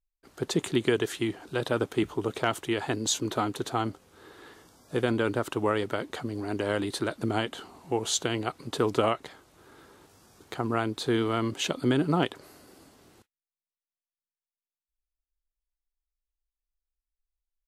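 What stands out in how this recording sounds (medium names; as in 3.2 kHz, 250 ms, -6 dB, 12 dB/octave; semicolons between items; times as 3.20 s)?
noise floor -96 dBFS; spectral tilt -4.5 dB/octave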